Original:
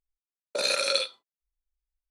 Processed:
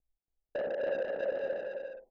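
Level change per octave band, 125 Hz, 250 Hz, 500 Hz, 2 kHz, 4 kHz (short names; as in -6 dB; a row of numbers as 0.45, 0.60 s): n/a, +3.0 dB, +2.0 dB, -8.5 dB, under -25 dB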